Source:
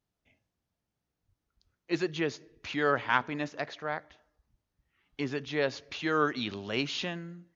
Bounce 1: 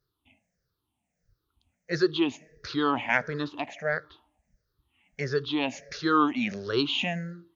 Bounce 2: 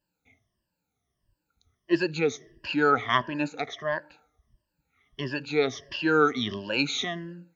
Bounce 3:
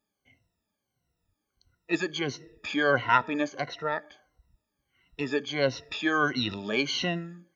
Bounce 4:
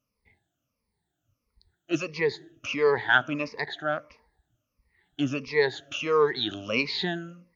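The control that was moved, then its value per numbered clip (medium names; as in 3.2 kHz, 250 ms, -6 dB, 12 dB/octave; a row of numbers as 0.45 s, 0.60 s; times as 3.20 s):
drifting ripple filter, ripples per octave: 0.58, 1.3, 2, 0.89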